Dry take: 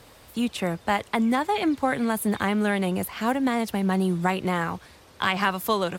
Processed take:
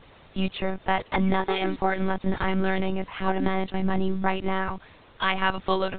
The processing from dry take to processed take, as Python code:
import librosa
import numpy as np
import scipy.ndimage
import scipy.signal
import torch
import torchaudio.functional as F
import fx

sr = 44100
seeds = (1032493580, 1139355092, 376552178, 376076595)

y = fx.lpc_monotone(x, sr, seeds[0], pitch_hz=190.0, order=16)